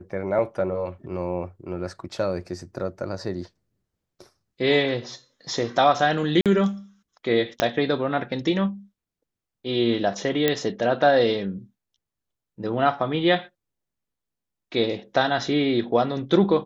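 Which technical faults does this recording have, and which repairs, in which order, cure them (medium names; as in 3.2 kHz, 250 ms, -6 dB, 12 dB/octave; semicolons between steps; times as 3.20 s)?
6.41–6.46 s: dropout 47 ms
7.60 s: pop -5 dBFS
10.48 s: pop -6 dBFS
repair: de-click; interpolate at 6.41 s, 47 ms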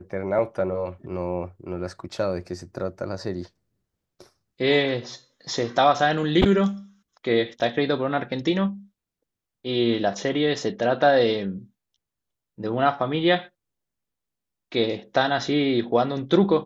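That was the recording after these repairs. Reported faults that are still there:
7.60 s: pop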